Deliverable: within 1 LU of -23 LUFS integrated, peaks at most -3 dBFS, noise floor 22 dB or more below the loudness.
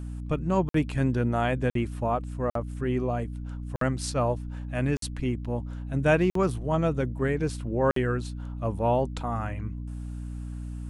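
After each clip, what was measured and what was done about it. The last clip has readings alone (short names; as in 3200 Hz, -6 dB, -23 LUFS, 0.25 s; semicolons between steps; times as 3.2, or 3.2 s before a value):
dropouts 7; longest dropout 53 ms; hum 60 Hz; harmonics up to 300 Hz; hum level -33 dBFS; loudness -28.5 LUFS; peak -10.5 dBFS; loudness target -23.0 LUFS
-> interpolate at 0.69/1.7/2.5/3.76/4.97/6.3/7.91, 53 ms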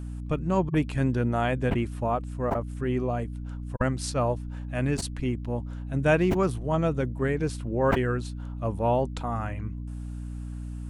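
dropouts 0; hum 60 Hz; harmonics up to 300 Hz; hum level -33 dBFS
-> de-hum 60 Hz, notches 5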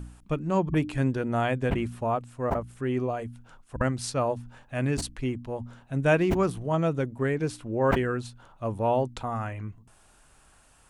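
hum none; loudness -28.5 LUFS; peak -10.0 dBFS; loudness target -23.0 LUFS
-> gain +5.5 dB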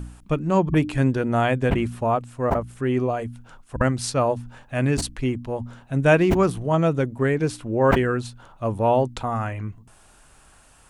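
loudness -23.0 LUFS; peak -4.5 dBFS; noise floor -53 dBFS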